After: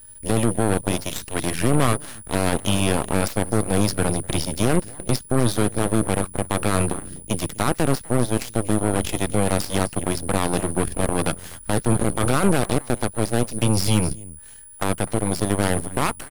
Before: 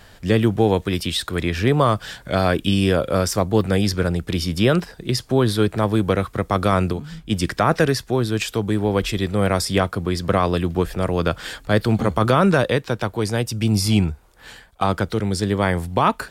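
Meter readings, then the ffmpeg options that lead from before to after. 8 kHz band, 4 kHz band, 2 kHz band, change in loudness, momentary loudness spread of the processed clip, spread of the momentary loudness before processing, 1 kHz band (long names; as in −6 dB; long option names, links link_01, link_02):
+6.5 dB, −3.5 dB, −3.5 dB, −2.5 dB, 7 LU, 6 LU, −3.5 dB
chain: -filter_complex "[0:a]lowshelf=frequency=160:gain=11,alimiter=limit=-7dB:level=0:latency=1:release=11,aeval=exprs='val(0)+0.0398*sin(2*PI*9800*n/s)':channel_layout=same,asplit=2[link_01][link_02];[link_02]adelay=250.7,volume=-14dB,highshelf=frequency=4000:gain=-5.64[link_03];[link_01][link_03]amix=inputs=2:normalize=0,aeval=exprs='0.596*(cos(1*acos(clip(val(0)/0.596,-1,1)))-cos(1*PI/2))+0.0335*(cos(3*acos(clip(val(0)/0.596,-1,1)))-cos(3*PI/2))+0.133*(cos(4*acos(clip(val(0)/0.596,-1,1)))-cos(4*PI/2))+0.106*(cos(7*acos(clip(val(0)/0.596,-1,1)))-cos(7*PI/2))+0.0376*(cos(8*acos(clip(val(0)/0.596,-1,1)))-cos(8*PI/2))':channel_layout=same,volume=-5.5dB"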